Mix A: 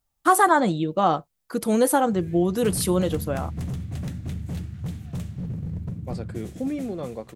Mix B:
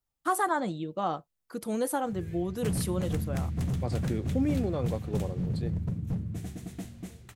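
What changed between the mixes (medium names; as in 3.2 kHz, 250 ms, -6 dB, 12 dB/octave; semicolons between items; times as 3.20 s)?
first voice -10.0 dB; second voice: entry -2.25 s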